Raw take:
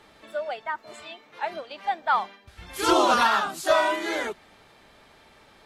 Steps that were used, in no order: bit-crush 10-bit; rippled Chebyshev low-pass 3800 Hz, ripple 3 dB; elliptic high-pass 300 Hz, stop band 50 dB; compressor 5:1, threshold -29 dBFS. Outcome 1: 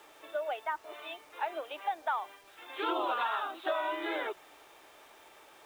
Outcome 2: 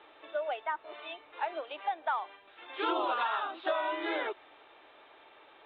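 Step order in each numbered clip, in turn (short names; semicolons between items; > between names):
elliptic high-pass > compressor > rippled Chebyshev low-pass > bit-crush; elliptic high-pass > bit-crush > rippled Chebyshev low-pass > compressor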